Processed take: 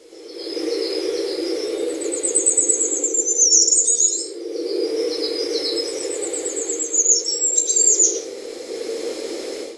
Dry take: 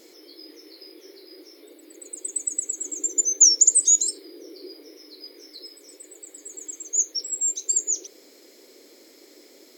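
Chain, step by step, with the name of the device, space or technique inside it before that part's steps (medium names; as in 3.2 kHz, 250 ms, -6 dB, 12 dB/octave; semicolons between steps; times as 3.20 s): filmed off a television (band-pass 240–7700 Hz; peaking EQ 470 Hz +11.5 dB 0.52 oct; reverberation RT60 0.40 s, pre-delay 99 ms, DRR -4.5 dB; white noise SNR 32 dB; level rider gain up to 15 dB; trim -1 dB; AAC 48 kbps 24 kHz)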